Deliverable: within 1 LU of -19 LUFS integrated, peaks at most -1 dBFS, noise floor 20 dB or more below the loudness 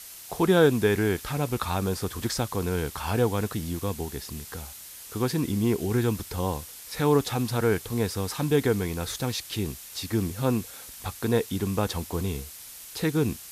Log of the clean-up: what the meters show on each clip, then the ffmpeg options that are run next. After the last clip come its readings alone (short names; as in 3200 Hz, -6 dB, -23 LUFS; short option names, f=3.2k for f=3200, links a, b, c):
noise floor -44 dBFS; noise floor target -48 dBFS; loudness -27.5 LUFS; peak -7.5 dBFS; loudness target -19.0 LUFS
-> -af "afftdn=nr=6:nf=-44"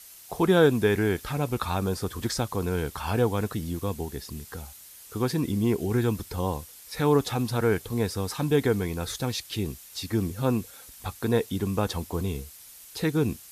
noise floor -48 dBFS; loudness -27.5 LUFS; peak -7.5 dBFS; loudness target -19.0 LUFS
-> -af "volume=8.5dB,alimiter=limit=-1dB:level=0:latency=1"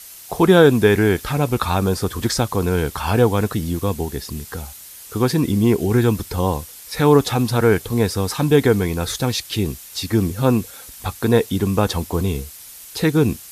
loudness -19.0 LUFS; peak -1.0 dBFS; noise floor -40 dBFS